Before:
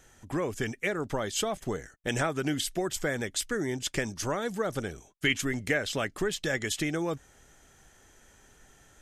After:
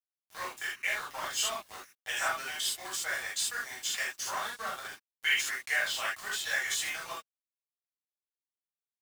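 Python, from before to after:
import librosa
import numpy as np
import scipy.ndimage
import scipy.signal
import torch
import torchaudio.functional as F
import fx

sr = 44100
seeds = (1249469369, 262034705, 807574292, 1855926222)

y = scipy.signal.sosfilt(scipy.signal.butter(4, 820.0, 'highpass', fs=sr, output='sos'), x)
y = np.where(np.abs(y) >= 10.0 ** (-37.5 / 20.0), y, 0.0)
y = fx.rev_gated(y, sr, seeds[0], gate_ms=100, shape='flat', drr_db=-7.5)
y = y * librosa.db_to_amplitude(-6.0)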